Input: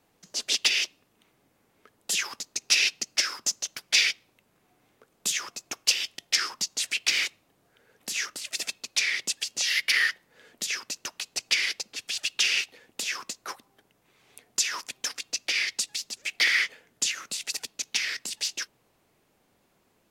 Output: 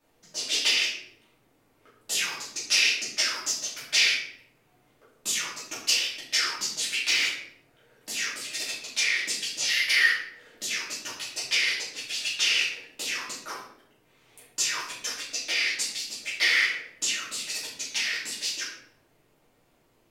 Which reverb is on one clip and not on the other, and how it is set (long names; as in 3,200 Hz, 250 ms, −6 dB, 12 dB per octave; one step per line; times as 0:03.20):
rectangular room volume 130 cubic metres, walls mixed, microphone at 2.6 metres
level −8 dB